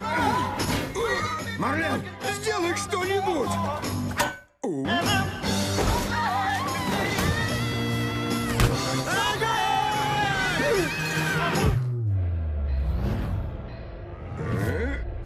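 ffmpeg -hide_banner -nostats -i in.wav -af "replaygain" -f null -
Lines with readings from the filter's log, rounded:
track_gain = +7.9 dB
track_peak = 0.332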